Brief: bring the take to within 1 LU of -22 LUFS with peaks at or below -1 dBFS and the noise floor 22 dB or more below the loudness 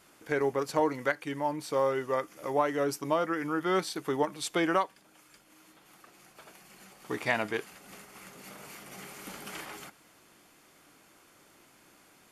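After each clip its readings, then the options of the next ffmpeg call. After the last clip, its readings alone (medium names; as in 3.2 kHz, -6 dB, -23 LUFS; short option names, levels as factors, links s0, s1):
loudness -31.0 LUFS; peak level -12.5 dBFS; loudness target -22.0 LUFS
-> -af "volume=2.82"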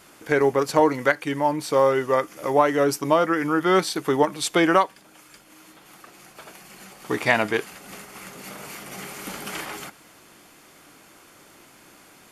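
loudness -22.0 LUFS; peak level -3.5 dBFS; noise floor -52 dBFS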